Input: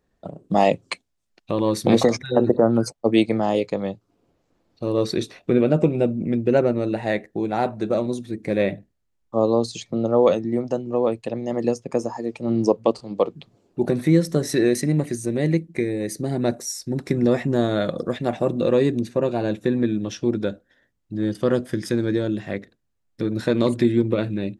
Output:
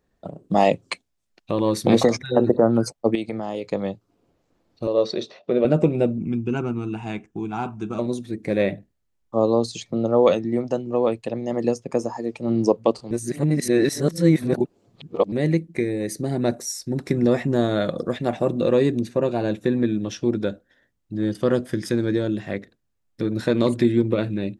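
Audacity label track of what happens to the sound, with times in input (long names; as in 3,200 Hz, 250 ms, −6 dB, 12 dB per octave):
3.150000	3.710000	downward compressor 3 to 1, threshold −26 dBFS
4.870000	5.650000	loudspeaker in its box 240–5,400 Hz, peaks and dips at 290 Hz −10 dB, 590 Hz +8 dB, 1,600 Hz −7 dB, 2,300 Hz −6 dB
6.180000	7.990000	phaser with its sweep stopped centre 2,800 Hz, stages 8
10.250000	11.180000	dynamic equaliser 2,700 Hz, up to +4 dB, over −38 dBFS, Q 0.78
13.110000	15.320000	reverse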